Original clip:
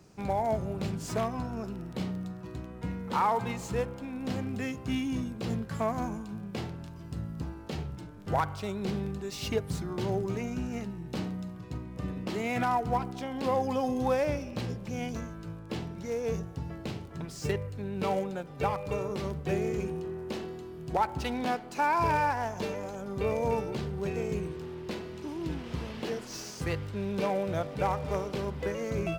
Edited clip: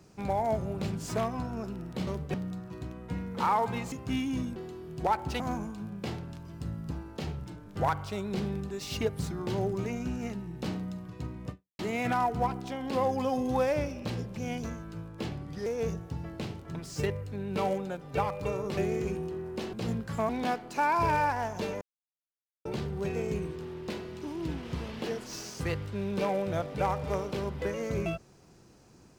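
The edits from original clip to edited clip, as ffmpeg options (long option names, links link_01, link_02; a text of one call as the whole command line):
ffmpeg -i in.wav -filter_complex "[0:a]asplit=14[link_01][link_02][link_03][link_04][link_05][link_06][link_07][link_08][link_09][link_10][link_11][link_12][link_13][link_14];[link_01]atrim=end=2.072[link_15];[link_02]atrim=start=19.228:end=19.502[link_16];[link_03]atrim=start=2.068:end=3.652[link_17];[link_04]atrim=start=4.708:end=5.352[link_18];[link_05]atrim=start=20.458:end=21.302[link_19];[link_06]atrim=start=5.908:end=12.3,asetpts=PTS-STARTPTS,afade=type=out:start_time=6.102:duration=0.29:curve=exp[link_20];[link_07]atrim=start=12.3:end=15.804,asetpts=PTS-STARTPTS,afade=type=in:duration=0.004:curve=hsin[link_21];[link_08]atrim=start=15.8:end=16.12,asetpts=PTS-STARTPTS,asetrate=37926,aresample=44100,atrim=end_sample=16409,asetpts=PTS-STARTPTS[link_22];[link_09]atrim=start=16.116:end=19.232[link_23];[link_10]atrim=start=19.498:end=20.462[link_24];[link_11]atrim=start=5.348:end=5.912[link_25];[link_12]atrim=start=21.298:end=22.82,asetpts=PTS-STARTPTS,afade=type=out:start_time=1.518:duration=0.004:curve=hsin[link_26];[link_13]atrim=start=22.82:end=23.66,asetpts=PTS-STARTPTS,volume=0[link_27];[link_14]atrim=start=23.66,asetpts=PTS-STARTPTS,afade=type=in:duration=0.004:curve=hsin[link_28];[link_15][link_16]acrossfade=duration=0.004:curve1=hsin:curve2=hsin[link_29];[link_29][link_17]acrossfade=duration=0.004:curve1=hsin:curve2=hsin[link_30];[link_30][link_18]acrossfade=duration=0.004:curve1=hsin:curve2=hsin[link_31];[link_31][link_19]acrossfade=duration=0.004:curve1=hsin:curve2=hsin[link_32];[link_20][link_21]concat=n=2:v=0:a=1[link_33];[link_32][link_33]acrossfade=duration=0.004:curve1=hsin:curve2=hsin[link_34];[link_34][link_22]acrossfade=duration=0.004:curve1=hsin:curve2=hsin[link_35];[link_35][link_23]acrossfade=duration=0.004:curve1=hsin:curve2=hsin[link_36];[link_36][link_24]acrossfade=duration=0.004:curve1=hsin:curve2=hsin[link_37];[link_37][link_25]acrossfade=duration=0.004:curve1=hsin:curve2=hsin[link_38];[link_26][link_27][link_28]concat=n=3:v=0:a=1[link_39];[link_38][link_39]acrossfade=duration=0.004:curve1=hsin:curve2=hsin" out.wav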